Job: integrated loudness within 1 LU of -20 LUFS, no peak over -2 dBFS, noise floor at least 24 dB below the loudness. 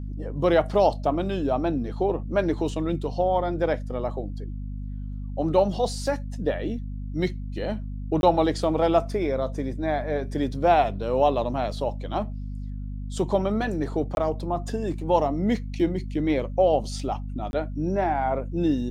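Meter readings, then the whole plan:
dropouts 3; longest dropout 21 ms; hum 50 Hz; harmonics up to 250 Hz; hum level -30 dBFS; loudness -25.5 LUFS; peak -6.5 dBFS; loudness target -20.0 LUFS
-> interpolate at 8.21/14.15/17.51, 21 ms; de-hum 50 Hz, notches 5; gain +5.5 dB; limiter -2 dBFS

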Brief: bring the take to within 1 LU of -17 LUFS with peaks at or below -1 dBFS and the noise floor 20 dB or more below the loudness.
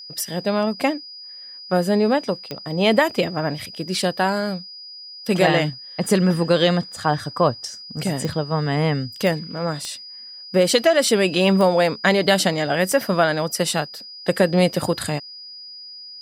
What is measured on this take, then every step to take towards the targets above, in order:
clicks 6; steady tone 4900 Hz; tone level -36 dBFS; loudness -20.5 LUFS; peak -2.5 dBFS; loudness target -17.0 LUFS
-> de-click; notch 4900 Hz, Q 30; gain +3.5 dB; limiter -1 dBFS

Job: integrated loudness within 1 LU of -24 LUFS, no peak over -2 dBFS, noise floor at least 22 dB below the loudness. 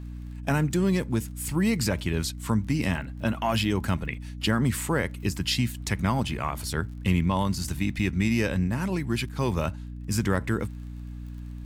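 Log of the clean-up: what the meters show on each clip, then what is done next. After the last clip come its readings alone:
ticks 29/s; hum 60 Hz; harmonics up to 300 Hz; hum level -35 dBFS; loudness -27.0 LUFS; peak -11.5 dBFS; loudness target -24.0 LUFS
-> de-click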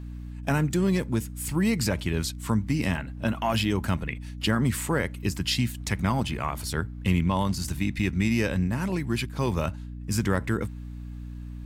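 ticks 0.086/s; hum 60 Hz; harmonics up to 300 Hz; hum level -35 dBFS
-> de-hum 60 Hz, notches 5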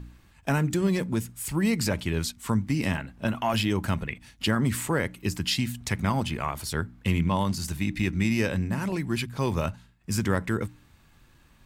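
hum none; loudness -28.0 LUFS; peak -11.5 dBFS; loudness target -24.0 LUFS
-> gain +4 dB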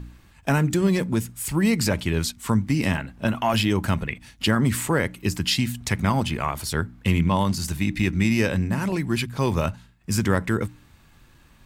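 loudness -24.0 LUFS; peak -7.5 dBFS; noise floor -54 dBFS

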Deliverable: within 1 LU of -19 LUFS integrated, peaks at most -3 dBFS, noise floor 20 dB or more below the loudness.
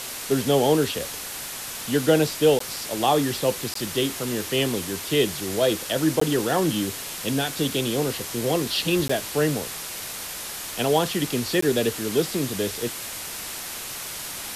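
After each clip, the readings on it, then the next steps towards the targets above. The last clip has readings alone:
dropouts 5; longest dropout 14 ms; noise floor -34 dBFS; noise floor target -45 dBFS; loudness -24.5 LUFS; peak -6.5 dBFS; loudness target -19.0 LUFS
-> interpolate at 2.59/3.74/6.2/9.08/11.61, 14 ms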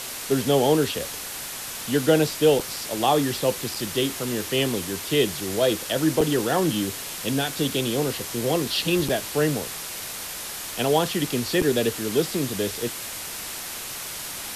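dropouts 0; noise floor -34 dBFS; noise floor target -45 dBFS
-> noise print and reduce 11 dB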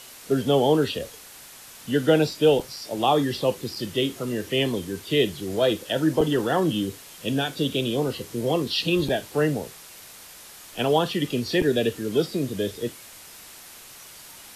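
noise floor -45 dBFS; loudness -24.5 LUFS; peak -7.0 dBFS; loudness target -19.0 LUFS
-> gain +5.5 dB; limiter -3 dBFS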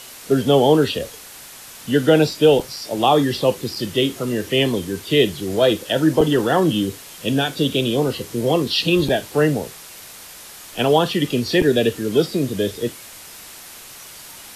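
loudness -19.0 LUFS; peak -3.0 dBFS; noise floor -40 dBFS

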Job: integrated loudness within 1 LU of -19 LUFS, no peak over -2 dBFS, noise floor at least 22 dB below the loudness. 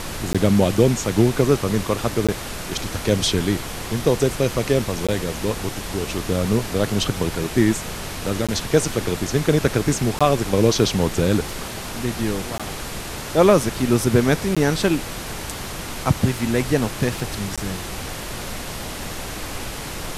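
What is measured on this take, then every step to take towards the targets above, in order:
dropouts 8; longest dropout 16 ms; noise floor -31 dBFS; noise floor target -44 dBFS; loudness -21.5 LUFS; peak -2.0 dBFS; loudness target -19.0 LUFS
-> interpolate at 0.33/2.27/5.07/8.47/10.19/12.58/14.55/17.56, 16 ms; noise print and reduce 13 dB; gain +2.5 dB; limiter -2 dBFS

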